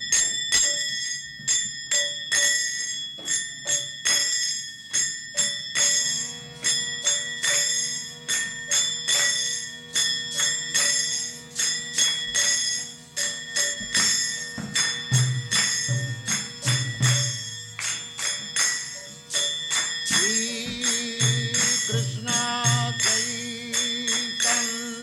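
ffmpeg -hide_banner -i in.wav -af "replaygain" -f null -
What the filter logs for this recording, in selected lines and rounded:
track_gain = +4.2 dB
track_peak = 0.215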